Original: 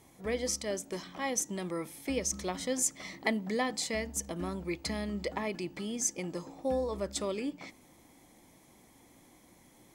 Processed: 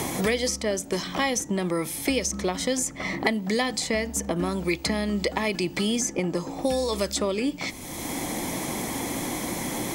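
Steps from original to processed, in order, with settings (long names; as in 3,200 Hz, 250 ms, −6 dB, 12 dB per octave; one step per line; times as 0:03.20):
multiband upward and downward compressor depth 100%
level +8 dB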